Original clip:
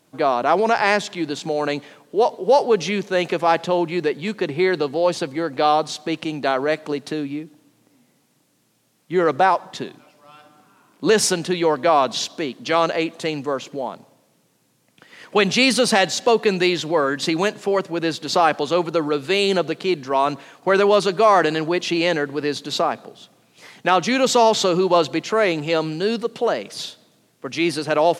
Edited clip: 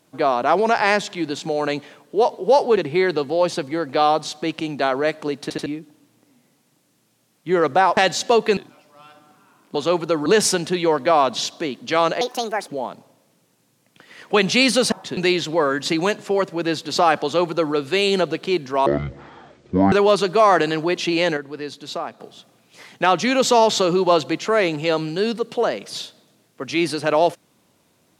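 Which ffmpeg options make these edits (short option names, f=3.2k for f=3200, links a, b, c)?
-filter_complex "[0:a]asplit=17[a][b][c][d][e][f][g][h][i][j][k][l][m][n][o][p][q];[a]atrim=end=2.772[r];[b]atrim=start=4.408:end=7.142[s];[c]atrim=start=7.058:end=7.142[t];[d]atrim=start=7.058:end=7.142[u];[e]atrim=start=7.298:end=9.612[v];[f]atrim=start=15.938:end=16.542[w];[g]atrim=start=9.858:end=11.042[x];[h]atrim=start=18.598:end=19.112[y];[i]atrim=start=11.038:end=12.994[z];[j]atrim=start=12.99:end=13.7,asetpts=PTS-STARTPTS,asetrate=66591,aresample=44100[aa];[k]atrim=start=13.696:end=15.942[ab];[l]atrim=start=9.608:end=9.862[ac];[m]atrim=start=16.538:end=20.234[ad];[n]atrim=start=20.23:end=20.76,asetpts=PTS-STARTPTS,asetrate=22050,aresample=44100[ae];[o]atrim=start=20.756:end=22.212[af];[p]atrim=start=22.208:end=23.042,asetpts=PTS-STARTPTS,volume=-7.5dB[ag];[q]atrim=start=23.038[ah];[r][s]acrossfade=d=0.004:c1=hsin:c2=hsin[ai];[ai][t]acrossfade=d=0.004:c1=hsin:c2=hsin[aj];[aj][u]acrossfade=d=0.004:c1=hsin:c2=hsin[ak];[ak][v]acrossfade=d=0.004:c1=hsin:c2=hsin[al];[al][w]acrossfade=d=0.004:c1=hsin:c2=hsin[am];[am][x]acrossfade=d=0.004:c1=hsin:c2=hsin[an];[an][y]acrossfade=d=0.004:c1=hsin:c2=hsin[ao];[ao][z]acrossfade=d=0.004:c1=hsin:c2=hsin[ap];[ap][aa]acrossfade=d=0.004:c1=hsin:c2=hsin[aq];[aq][ab]acrossfade=d=0.004:c1=hsin:c2=hsin[ar];[ar][ac]acrossfade=d=0.004:c1=hsin:c2=hsin[as];[as][ad]acrossfade=d=0.004:c1=hsin:c2=hsin[at];[at][ae]acrossfade=d=0.004:c1=hsin:c2=hsin[au];[au][af]acrossfade=d=0.004:c1=hsin:c2=hsin[av];[av][ag]acrossfade=d=0.004:c1=hsin:c2=hsin[aw];[aw][ah]acrossfade=d=0.004:c1=hsin:c2=hsin"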